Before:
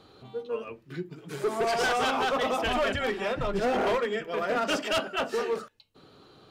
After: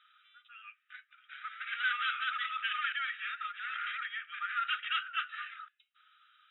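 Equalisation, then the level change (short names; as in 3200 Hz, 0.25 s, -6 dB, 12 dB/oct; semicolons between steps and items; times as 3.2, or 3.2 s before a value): brick-wall FIR band-pass 1200–3900 Hz; air absorption 190 m; 0.0 dB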